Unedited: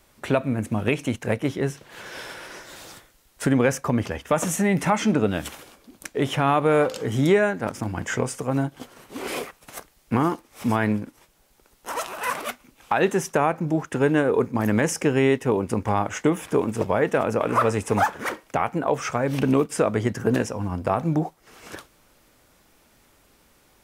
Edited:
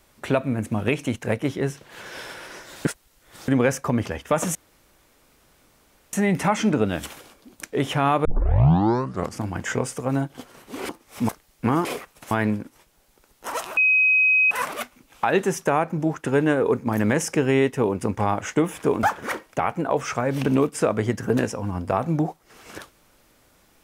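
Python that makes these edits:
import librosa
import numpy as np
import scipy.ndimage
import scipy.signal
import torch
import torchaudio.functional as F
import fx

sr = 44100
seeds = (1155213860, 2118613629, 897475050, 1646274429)

y = fx.edit(x, sr, fx.reverse_span(start_s=2.85, length_s=0.63),
    fx.insert_room_tone(at_s=4.55, length_s=1.58),
    fx.tape_start(start_s=6.67, length_s=1.18),
    fx.swap(start_s=9.31, length_s=0.46, other_s=10.33, other_length_s=0.4),
    fx.insert_tone(at_s=12.19, length_s=0.74, hz=2530.0, db=-14.5),
    fx.cut(start_s=16.71, length_s=1.29), tone=tone)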